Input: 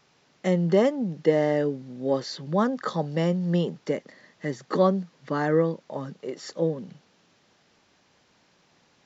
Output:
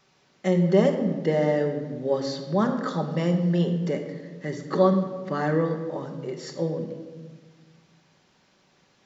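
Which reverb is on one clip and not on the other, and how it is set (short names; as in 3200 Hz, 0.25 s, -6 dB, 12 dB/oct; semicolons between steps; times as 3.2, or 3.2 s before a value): shoebox room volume 1200 m³, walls mixed, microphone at 1.1 m; gain -1.5 dB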